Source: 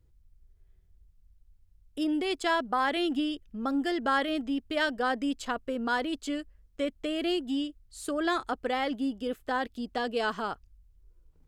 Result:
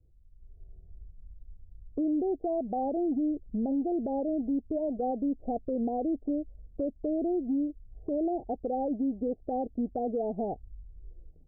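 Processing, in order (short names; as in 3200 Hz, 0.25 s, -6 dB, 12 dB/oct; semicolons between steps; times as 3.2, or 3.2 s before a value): steep low-pass 770 Hz 96 dB/oct; compressor 2:1, threshold -45 dBFS, peak gain reduction 11 dB; limiter -35.5 dBFS, peak gain reduction 6 dB; AGC gain up to 12 dB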